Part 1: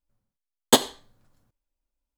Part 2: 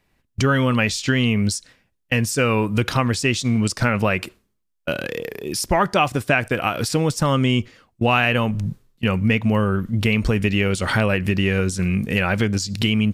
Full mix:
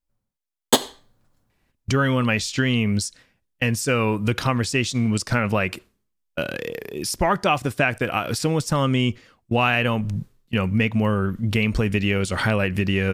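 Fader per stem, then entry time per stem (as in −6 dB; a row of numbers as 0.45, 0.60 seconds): 0.0, −2.0 decibels; 0.00, 1.50 seconds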